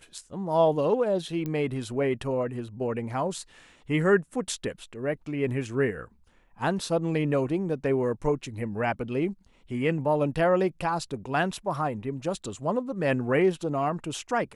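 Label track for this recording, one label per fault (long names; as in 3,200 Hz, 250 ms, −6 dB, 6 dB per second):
1.460000	1.460000	click −20 dBFS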